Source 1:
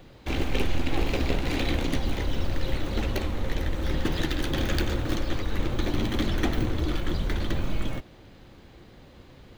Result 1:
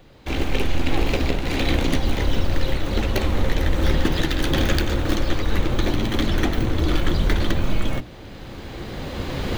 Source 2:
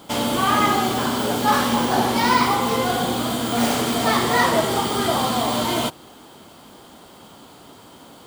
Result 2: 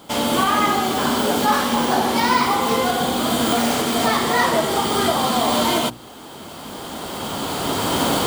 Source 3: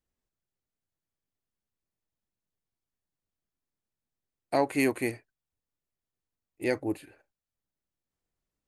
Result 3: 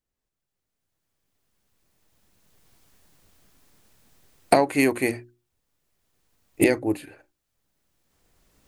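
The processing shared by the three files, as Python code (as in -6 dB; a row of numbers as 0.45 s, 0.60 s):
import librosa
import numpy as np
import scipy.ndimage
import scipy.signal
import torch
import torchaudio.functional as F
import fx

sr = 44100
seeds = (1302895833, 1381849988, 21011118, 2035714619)

y = fx.recorder_agc(x, sr, target_db=-8.5, rise_db_per_s=11.0, max_gain_db=30)
y = fx.hum_notches(y, sr, base_hz=60, count=6)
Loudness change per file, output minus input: +5.5 LU, +1.0 LU, +7.0 LU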